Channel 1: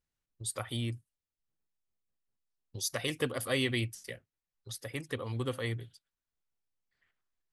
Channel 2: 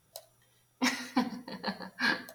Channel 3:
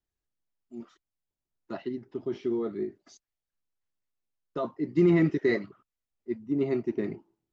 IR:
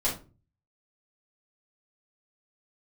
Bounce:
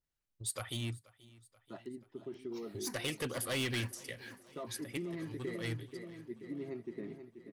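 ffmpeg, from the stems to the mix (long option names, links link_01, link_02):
-filter_complex "[0:a]asoftclip=type=hard:threshold=-29.5dB,adynamicequalizer=threshold=0.00282:dfrequency=1800:dqfactor=0.7:tfrequency=1800:tqfactor=0.7:attack=5:release=100:ratio=0.375:range=2:mode=boostabove:tftype=highshelf,volume=-3dB,asplit=2[link_01][link_02];[link_02]volume=-22.5dB[link_03];[1:a]aeval=exprs='sgn(val(0))*max(abs(val(0))-0.00562,0)':channel_layout=same,acrusher=bits=6:mode=log:mix=0:aa=0.000001,asplit=2[link_04][link_05];[link_05]afreqshift=-1.9[link_06];[link_04][link_06]amix=inputs=2:normalize=1,adelay=1700,volume=-14dB,afade=type=in:start_time=2.53:duration=0.28:silence=0.421697,asplit=2[link_07][link_08];[link_08]volume=-4.5dB[link_09];[2:a]volume=-11dB,asplit=3[link_10][link_11][link_12];[link_11]volume=-13dB[link_13];[link_12]apad=whole_len=331739[link_14];[link_01][link_14]sidechaincompress=threshold=-45dB:ratio=6:attack=6.7:release=119[link_15];[link_07][link_10]amix=inputs=2:normalize=0,acompressor=threshold=-38dB:ratio=6,volume=0dB[link_16];[link_03][link_09][link_13]amix=inputs=3:normalize=0,aecho=0:1:482|964|1446|1928|2410|2892|3374|3856|4338:1|0.59|0.348|0.205|0.121|0.0715|0.0422|0.0249|0.0147[link_17];[link_15][link_16][link_17]amix=inputs=3:normalize=0"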